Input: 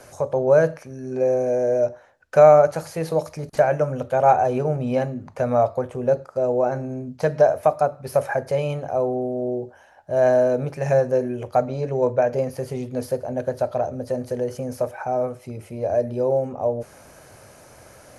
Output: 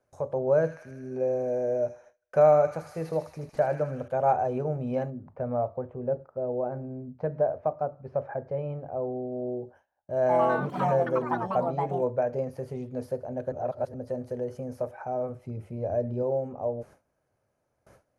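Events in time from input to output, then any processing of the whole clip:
0.56–4.08 s: feedback echo behind a high-pass 78 ms, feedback 70%, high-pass 2.2 kHz, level -4 dB
5.10–9.32 s: tape spacing loss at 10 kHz 37 dB
10.19–12.52 s: ever faster or slower copies 101 ms, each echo +5 st, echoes 3
13.52–13.94 s: reverse
15.29–16.23 s: tone controls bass +6 dB, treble -2 dB
whole clip: gate with hold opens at -35 dBFS; treble shelf 2.1 kHz -11 dB; trim -6.5 dB

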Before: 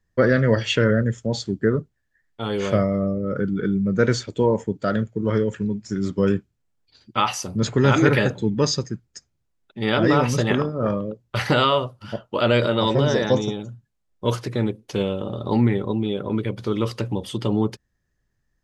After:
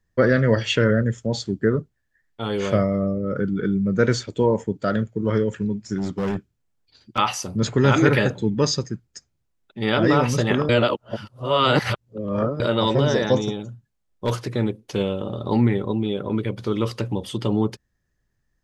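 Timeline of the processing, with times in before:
5.98–7.18 s: overload inside the chain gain 20.5 dB
10.69–12.60 s: reverse
13.40–14.47 s: hard clipper -16 dBFS

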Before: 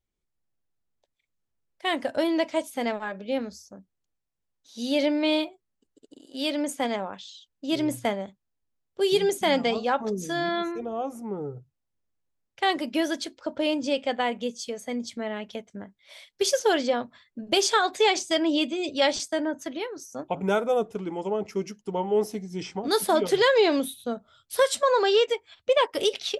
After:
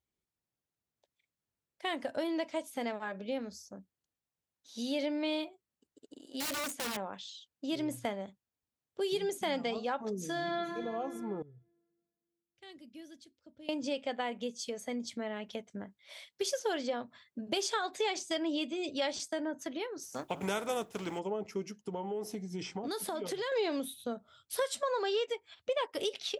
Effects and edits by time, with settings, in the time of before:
6.40–6.97 s: integer overflow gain 24.5 dB
10.26–10.79 s: reverb throw, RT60 2.6 s, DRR 4 dB
11.42–13.69 s: amplifier tone stack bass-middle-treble 10-0-1
20.02–21.18 s: spectral contrast reduction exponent 0.63
21.78–23.52 s: compression 3:1, threshold -29 dBFS
whole clip: high-pass 72 Hz; compression 2:1, threshold -34 dBFS; trim -2.5 dB

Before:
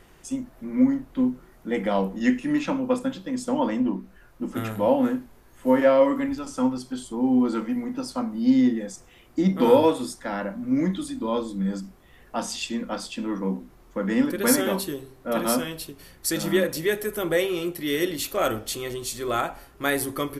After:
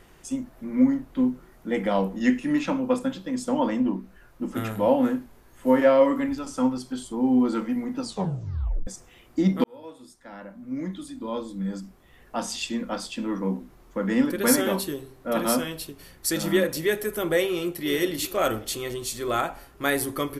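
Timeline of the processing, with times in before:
8.01 s: tape stop 0.86 s
9.64–12.64 s: fade in
17.46–17.86 s: echo throw 390 ms, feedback 25%, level -7.5 dB

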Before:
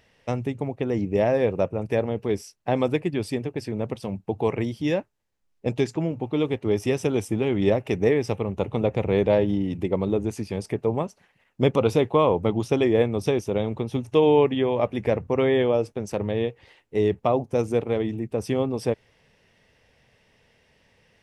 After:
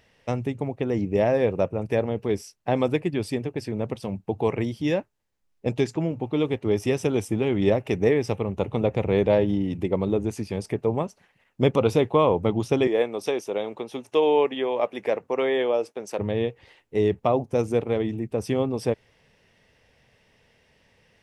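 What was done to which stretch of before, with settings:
12.87–16.19 s: high-pass 390 Hz

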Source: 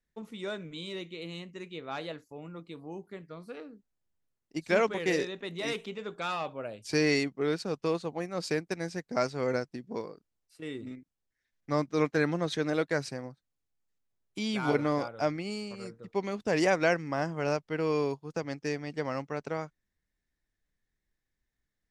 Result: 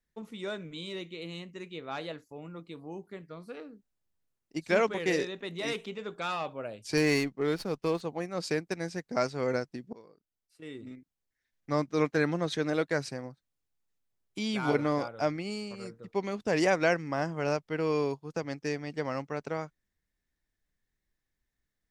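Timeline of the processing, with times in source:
6.97–8.01 s: sliding maximum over 3 samples
9.93–11.99 s: fade in equal-power, from -19.5 dB

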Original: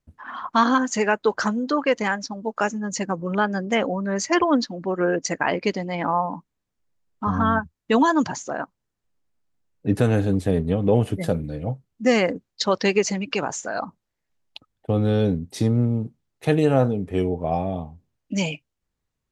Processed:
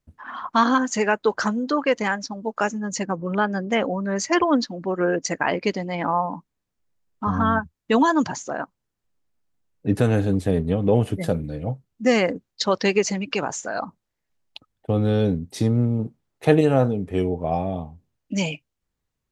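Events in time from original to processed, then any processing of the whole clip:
3.02–3.90 s: treble shelf 5.6 kHz -> 8.1 kHz -9 dB
15.99–16.61 s: peaking EQ 680 Hz +5.5 dB 2.9 oct

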